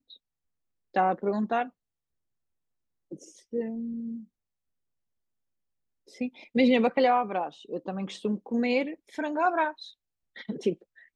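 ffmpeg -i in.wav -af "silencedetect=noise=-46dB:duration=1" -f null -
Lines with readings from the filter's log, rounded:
silence_start: 1.69
silence_end: 3.11 | silence_duration: 1.42
silence_start: 4.24
silence_end: 6.08 | silence_duration: 1.84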